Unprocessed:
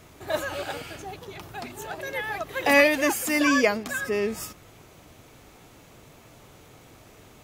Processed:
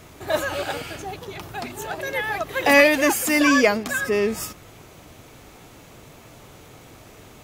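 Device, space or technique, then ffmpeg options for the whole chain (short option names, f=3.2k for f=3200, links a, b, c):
parallel distortion: -filter_complex "[0:a]asplit=2[a][b];[b]asoftclip=type=hard:threshold=-22dB,volume=-9.5dB[c];[a][c]amix=inputs=2:normalize=0,volume=2.5dB"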